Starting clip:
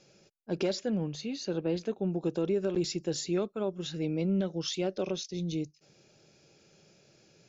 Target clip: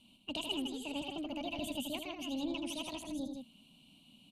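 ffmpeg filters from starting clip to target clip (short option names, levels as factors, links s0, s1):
-filter_complex "[0:a]firequalizer=gain_entry='entry(130,0);entry(200,-20);entry(1000,-26);entry(1700,10);entry(2800,-20);entry(5600,-18)':delay=0.05:min_phase=1,asplit=2[s0][s1];[s1]aecho=0:1:137|277:0.447|0.501[s2];[s0][s2]amix=inputs=2:normalize=0,asetrate=76440,aresample=44100,volume=2"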